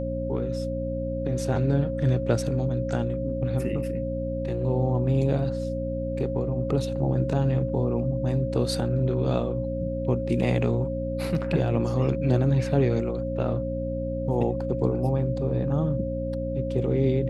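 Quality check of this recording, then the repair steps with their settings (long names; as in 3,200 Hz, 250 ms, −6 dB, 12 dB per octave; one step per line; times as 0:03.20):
mains hum 60 Hz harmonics 5 −31 dBFS
whistle 540 Hz −30 dBFS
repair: hum removal 60 Hz, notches 5
notch filter 540 Hz, Q 30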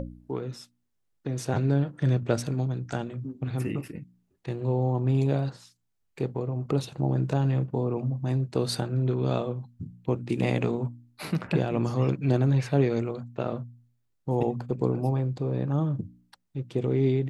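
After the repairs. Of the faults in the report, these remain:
none of them is left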